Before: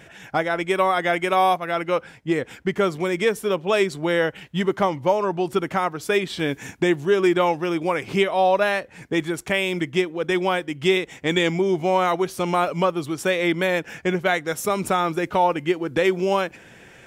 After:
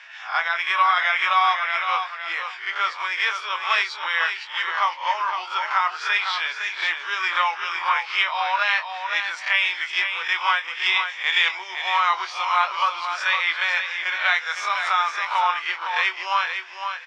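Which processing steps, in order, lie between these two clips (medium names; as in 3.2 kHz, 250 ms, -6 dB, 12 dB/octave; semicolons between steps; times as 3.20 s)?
reverse spectral sustain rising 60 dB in 0.35 s; elliptic band-pass 1–5.2 kHz, stop band 70 dB; doubling 24 ms -8.5 dB; feedback delay 509 ms, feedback 15%, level -7 dB; trim +3.5 dB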